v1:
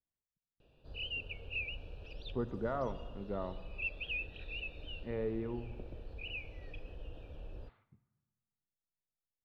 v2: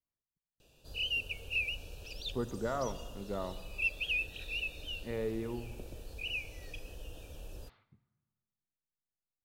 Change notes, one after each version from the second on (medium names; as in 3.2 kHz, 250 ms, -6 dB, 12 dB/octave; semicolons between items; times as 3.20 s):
master: remove distance through air 390 m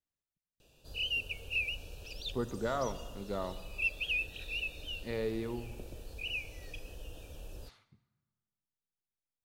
speech: remove distance through air 330 m